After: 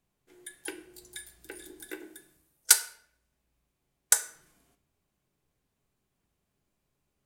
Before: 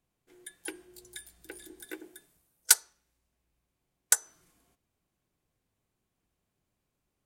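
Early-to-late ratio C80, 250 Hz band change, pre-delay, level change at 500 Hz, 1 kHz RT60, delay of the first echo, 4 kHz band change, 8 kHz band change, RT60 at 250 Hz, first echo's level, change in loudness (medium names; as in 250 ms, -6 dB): 16.5 dB, +1.0 dB, 5 ms, +2.0 dB, 0.55 s, no echo, +1.5 dB, +1.5 dB, 0.85 s, no echo, +1.5 dB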